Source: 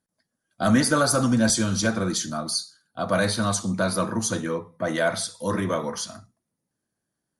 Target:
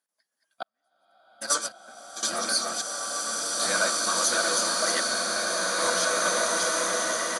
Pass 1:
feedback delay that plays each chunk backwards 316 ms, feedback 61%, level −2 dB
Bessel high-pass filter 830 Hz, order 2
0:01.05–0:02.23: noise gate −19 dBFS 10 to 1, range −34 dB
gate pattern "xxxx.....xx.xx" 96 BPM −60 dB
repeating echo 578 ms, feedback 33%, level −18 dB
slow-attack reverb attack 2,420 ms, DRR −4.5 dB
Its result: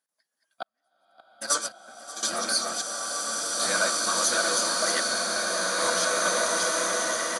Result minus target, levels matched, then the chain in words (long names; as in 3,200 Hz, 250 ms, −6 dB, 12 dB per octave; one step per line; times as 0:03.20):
echo 357 ms early
feedback delay that plays each chunk backwards 316 ms, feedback 61%, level −2 dB
Bessel high-pass filter 830 Hz, order 2
0:01.05–0:02.23: noise gate −19 dBFS 10 to 1, range −34 dB
gate pattern "xxxx.....xx.xx" 96 BPM −60 dB
repeating echo 935 ms, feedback 33%, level −18 dB
slow-attack reverb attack 2,420 ms, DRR −4.5 dB